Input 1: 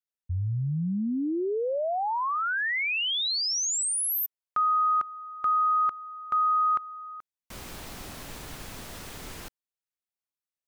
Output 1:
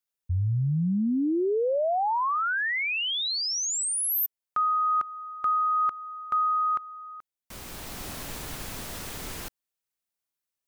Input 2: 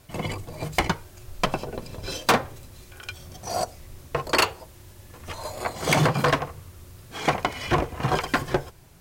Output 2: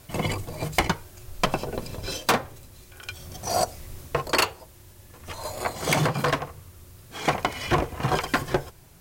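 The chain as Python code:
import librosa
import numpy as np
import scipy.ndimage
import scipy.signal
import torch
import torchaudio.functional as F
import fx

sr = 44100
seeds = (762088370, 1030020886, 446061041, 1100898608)

y = fx.high_shelf(x, sr, hz=7800.0, db=4.5)
y = fx.rider(y, sr, range_db=3, speed_s=0.5)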